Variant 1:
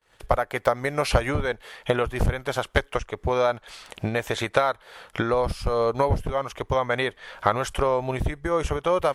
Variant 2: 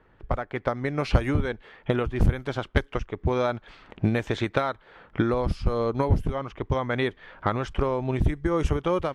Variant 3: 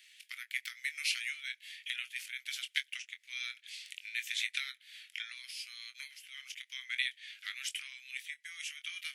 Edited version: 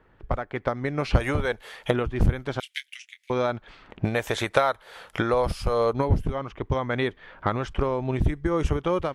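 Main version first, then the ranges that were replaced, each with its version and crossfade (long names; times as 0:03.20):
2
0:01.20–0:01.91: punch in from 1
0:02.60–0:03.30: punch in from 3
0:04.05–0:05.93: punch in from 1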